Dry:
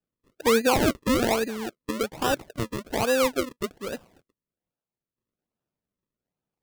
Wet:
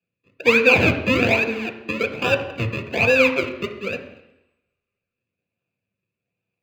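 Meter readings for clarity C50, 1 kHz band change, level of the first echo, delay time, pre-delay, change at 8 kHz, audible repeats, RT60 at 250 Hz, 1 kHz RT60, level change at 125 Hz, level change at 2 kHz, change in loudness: 10.0 dB, 0.0 dB, no echo, no echo, 3 ms, -7.5 dB, no echo, 0.85 s, 0.85 s, +8.5 dB, +12.5 dB, +6.5 dB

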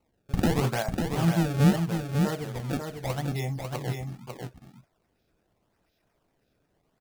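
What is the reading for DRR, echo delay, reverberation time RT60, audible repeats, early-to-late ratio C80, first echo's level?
no reverb, 547 ms, no reverb, 1, no reverb, -5.0 dB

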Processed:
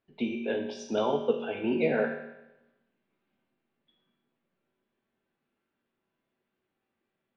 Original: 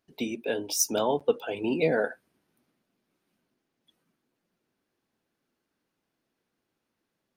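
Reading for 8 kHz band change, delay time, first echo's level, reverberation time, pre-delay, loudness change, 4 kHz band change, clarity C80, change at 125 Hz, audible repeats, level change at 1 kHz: under -20 dB, no echo, no echo, 0.95 s, 5 ms, -2.0 dB, -7.0 dB, 8.0 dB, -2.0 dB, no echo, -2.0 dB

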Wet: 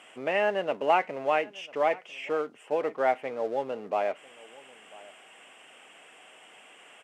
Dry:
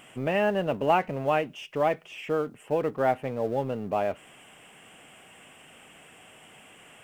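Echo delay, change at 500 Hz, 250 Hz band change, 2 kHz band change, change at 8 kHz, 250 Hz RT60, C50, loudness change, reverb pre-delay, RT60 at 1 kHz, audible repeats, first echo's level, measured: 996 ms, -1.0 dB, -7.5 dB, +1.5 dB, no reading, no reverb, no reverb, -1.0 dB, no reverb, no reverb, 1, -22.0 dB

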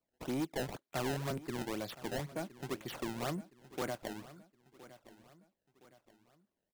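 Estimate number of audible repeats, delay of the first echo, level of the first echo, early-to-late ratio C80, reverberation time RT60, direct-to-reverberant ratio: 3, 1016 ms, -17.5 dB, no reverb, no reverb, no reverb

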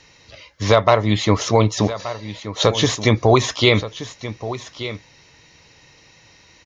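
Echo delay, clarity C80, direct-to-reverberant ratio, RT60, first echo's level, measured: 1177 ms, no reverb, no reverb, no reverb, -13.5 dB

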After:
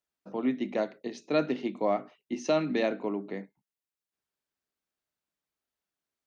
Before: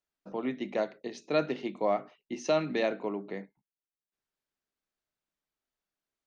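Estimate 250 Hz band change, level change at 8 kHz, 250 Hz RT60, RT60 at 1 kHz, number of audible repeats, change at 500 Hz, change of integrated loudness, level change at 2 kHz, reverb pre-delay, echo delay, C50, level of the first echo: +4.0 dB, no reading, no reverb, no reverb, no echo, +0.5 dB, +1.5 dB, 0.0 dB, no reverb, no echo, no reverb, no echo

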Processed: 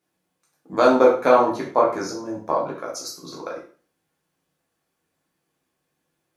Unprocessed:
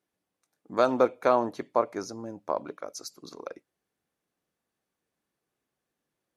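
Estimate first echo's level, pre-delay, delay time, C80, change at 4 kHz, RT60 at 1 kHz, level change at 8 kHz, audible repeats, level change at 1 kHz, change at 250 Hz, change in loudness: no echo, 5 ms, no echo, 11.0 dB, +8.0 dB, 0.40 s, +8.0 dB, no echo, +8.5 dB, +8.5 dB, +8.0 dB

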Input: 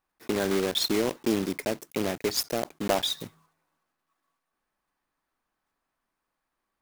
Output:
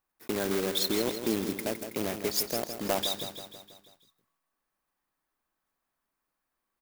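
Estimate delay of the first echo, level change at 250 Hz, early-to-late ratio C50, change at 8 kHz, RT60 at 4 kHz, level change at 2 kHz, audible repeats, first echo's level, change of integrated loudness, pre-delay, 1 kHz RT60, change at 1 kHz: 162 ms, -3.5 dB, no reverb, -0.5 dB, no reverb, -3.0 dB, 6, -9.0 dB, -2.0 dB, no reverb, no reverb, -3.5 dB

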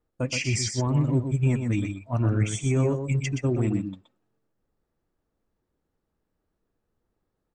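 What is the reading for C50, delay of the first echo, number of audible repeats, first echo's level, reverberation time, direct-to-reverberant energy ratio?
no reverb, 123 ms, 1, -7.0 dB, no reverb, no reverb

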